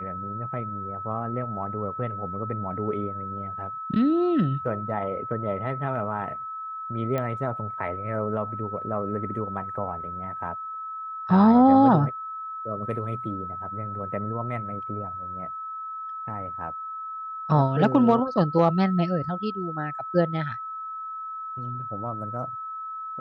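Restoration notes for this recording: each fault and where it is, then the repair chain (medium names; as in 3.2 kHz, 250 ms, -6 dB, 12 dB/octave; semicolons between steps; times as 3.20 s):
whine 1.3 kHz -32 dBFS
7.18 s: pop -16 dBFS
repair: de-click; band-stop 1.3 kHz, Q 30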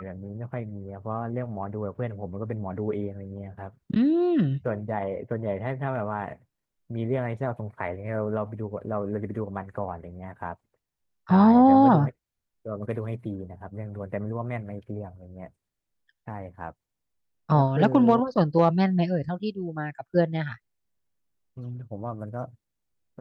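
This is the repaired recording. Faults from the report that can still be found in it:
7.18 s: pop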